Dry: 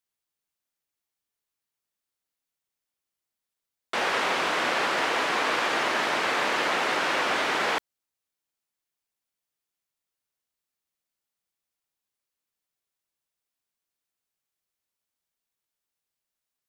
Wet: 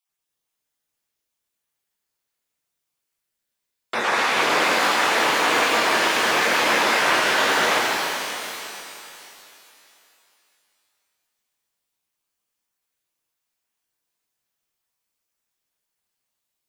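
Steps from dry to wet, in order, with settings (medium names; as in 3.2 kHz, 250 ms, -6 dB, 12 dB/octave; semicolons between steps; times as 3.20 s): random holes in the spectrogram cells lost 27%; pitch-shifted reverb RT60 3 s, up +12 st, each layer -8 dB, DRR -3.5 dB; trim +2.5 dB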